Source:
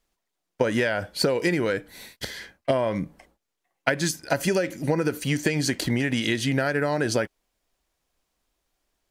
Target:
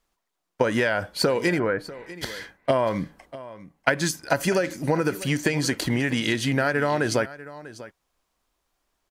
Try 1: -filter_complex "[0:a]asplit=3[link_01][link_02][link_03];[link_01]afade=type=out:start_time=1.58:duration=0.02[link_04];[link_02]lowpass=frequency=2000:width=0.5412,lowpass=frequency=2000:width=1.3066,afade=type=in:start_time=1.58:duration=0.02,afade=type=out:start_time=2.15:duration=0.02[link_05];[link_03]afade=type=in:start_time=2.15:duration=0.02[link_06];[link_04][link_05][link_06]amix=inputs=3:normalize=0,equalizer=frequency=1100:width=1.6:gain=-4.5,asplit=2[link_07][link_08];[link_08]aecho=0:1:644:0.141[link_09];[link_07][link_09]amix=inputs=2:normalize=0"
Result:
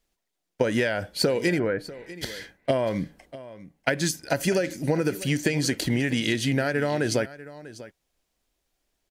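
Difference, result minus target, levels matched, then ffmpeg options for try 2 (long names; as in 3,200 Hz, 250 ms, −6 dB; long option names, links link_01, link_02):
1,000 Hz band −4.5 dB
-filter_complex "[0:a]asplit=3[link_01][link_02][link_03];[link_01]afade=type=out:start_time=1.58:duration=0.02[link_04];[link_02]lowpass=frequency=2000:width=0.5412,lowpass=frequency=2000:width=1.3066,afade=type=in:start_time=1.58:duration=0.02,afade=type=out:start_time=2.15:duration=0.02[link_05];[link_03]afade=type=in:start_time=2.15:duration=0.02[link_06];[link_04][link_05][link_06]amix=inputs=3:normalize=0,equalizer=frequency=1100:width=1.6:gain=5.5,asplit=2[link_07][link_08];[link_08]aecho=0:1:644:0.141[link_09];[link_07][link_09]amix=inputs=2:normalize=0"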